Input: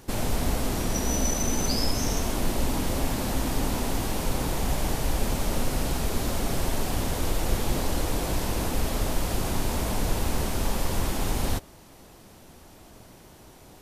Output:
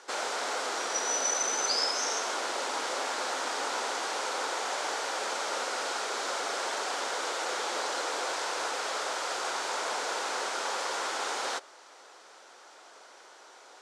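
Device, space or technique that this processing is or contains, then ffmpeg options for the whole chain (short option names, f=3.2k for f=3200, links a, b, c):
phone speaker on a table: -filter_complex "[0:a]highpass=f=490:w=0.5412,highpass=f=490:w=1.3066,equalizer=f=640:t=q:w=4:g=-4,equalizer=f=1.4k:t=q:w=4:g=7,equalizer=f=2.7k:t=q:w=4:g=-3,lowpass=f=7.5k:w=0.5412,lowpass=f=7.5k:w=1.3066,asettb=1/sr,asplit=3[a][b][c];[a]atrim=end=8.264[d];[b]atrim=start=8.26:end=9.81,asetpts=PTS-STARTPTS,afade=t=in:d=0.004:c=qsin,afade=t=out:st=1.546:d=0.004:c=qsin,lowshelf=f=140:t=q:w=1.5:g=10[e];[c]atrim=start=9.806[f];[d][e]acrossfade=d=0.004:c1=hsin:c2=qsin[g];[g][f]acrossfade=d=0.004:c1=qsin:c2=hsin,volume=2dB"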